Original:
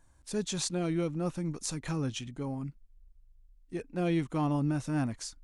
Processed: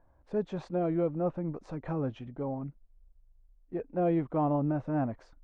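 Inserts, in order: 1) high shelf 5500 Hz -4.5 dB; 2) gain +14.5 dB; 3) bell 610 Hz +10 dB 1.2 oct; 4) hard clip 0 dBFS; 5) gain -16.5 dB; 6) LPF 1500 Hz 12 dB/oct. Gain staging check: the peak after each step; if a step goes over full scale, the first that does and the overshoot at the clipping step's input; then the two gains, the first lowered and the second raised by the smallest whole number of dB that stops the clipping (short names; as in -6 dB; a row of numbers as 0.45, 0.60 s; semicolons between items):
-18.0, -3.5, -2.0, -2.0, -18.5, -18.5 dBFS; no overload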